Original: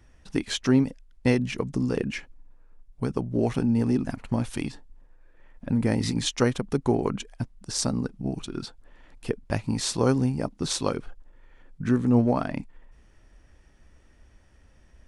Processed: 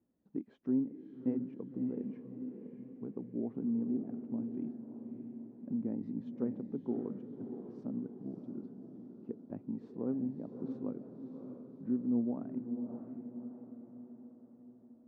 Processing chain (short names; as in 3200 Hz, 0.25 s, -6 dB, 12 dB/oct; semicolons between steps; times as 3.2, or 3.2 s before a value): ladder band-pass 280 Hz, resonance 40%; diffused feedback echo 0.609 s, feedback 53%, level -7 dB; gain -3 dB